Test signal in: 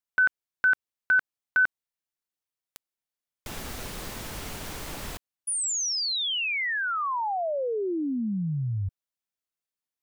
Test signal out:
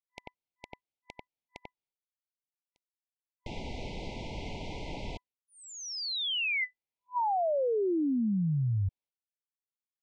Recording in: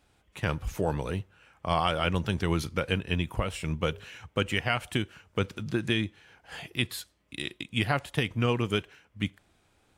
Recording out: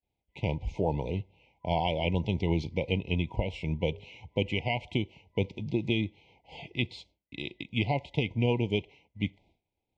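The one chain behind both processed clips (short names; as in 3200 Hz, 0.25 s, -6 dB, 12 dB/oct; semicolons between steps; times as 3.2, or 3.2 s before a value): Gaussian blur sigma 2 samples; expander -55 dBFS; FFT band-reject 1000–2000 Hz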